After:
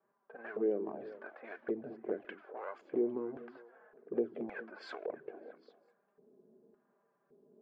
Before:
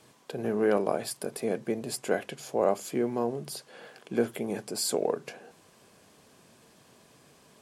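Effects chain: low-pass opened by the level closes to 400 Hz, open at -23 dBFS; LPF 3600 Hz 12 dB/oct; low shelf 400 Hz -7 dB; compressor 3:1, threshold -35 dBFS, peak gain reduction 10.5 dB; LFO band-pass square 0.89 Hz 360–1500 Hz; envelope flanger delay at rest 5.1 ms, full sweep at -34 dBFS; delay with a stepping band-pass 0.201 s, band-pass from 240 Hz, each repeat 1.4 oct, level -9.5 dB; gain +9.5 dB

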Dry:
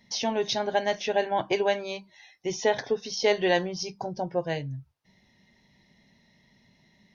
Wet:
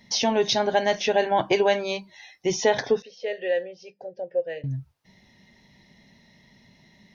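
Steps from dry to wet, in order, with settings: in parallel at 0 dB: limiter -19 dBFS, peak gain reduction 8 dB; 3.02–4.64 on the sum: vowel filter e

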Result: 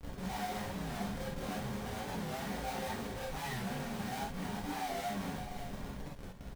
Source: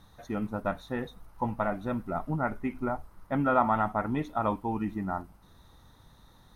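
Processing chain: band-swap scrambler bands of 500 Hz; 0.69–2.19 inverse Chebyshev low-pass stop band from 4100 Hz, stop band 80 dB; resonant low shelf 300 Hz +9 dB, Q 3; de-hum 54.58 Hz, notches 8; 3.73–4.75 level quantiser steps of 19 dB; tube stage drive 38 dB, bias 0.45; Schmitt trigger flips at -51 dBFS; echo 0.563 s -9.5 dB; non-linear reverb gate 90 ms flat, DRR -6 dB; record warp 45 rpm, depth 100 cents; gain -3.5 dB

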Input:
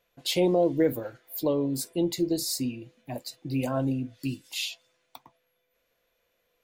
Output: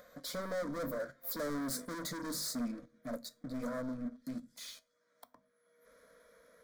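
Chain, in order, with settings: Doppler pass-by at 1.73, 18 m/s, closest 7.5 m; HPF 49 Hz 12 dB/oct; high shelf 5500 Hz -10.5 dB; notches 50/100/150/200/250 Hz; in parallel at 0 dB: compressor, threshold -59 dBFS, peak gain reduction 32 dB; on the sum: sample leveller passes 2; upward compressor, threshold -44 dBFS; soft clip -39.5 dBFS, distortion -3 dB; fixed phaser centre 550 Hz, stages 8; on a send at -18 dB: reverb RT60 0.35 s, pre-delay 5 ms; on the sum: gain +6 dB

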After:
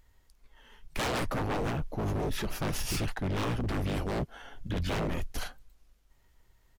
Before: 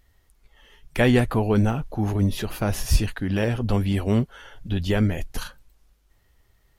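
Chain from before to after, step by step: harmoniser -12 st -3 dB, -7 st -16 dB; wavefolder -20.5 dBFS; gain -5 dB

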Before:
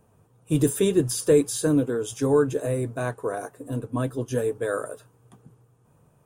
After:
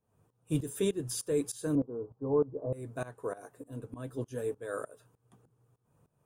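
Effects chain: 1.75–2.73 steep low-pass 1100 Hz 48 dB/oct; tremolo saw up 3.3 Hz, depth 90%; gain -6 dB

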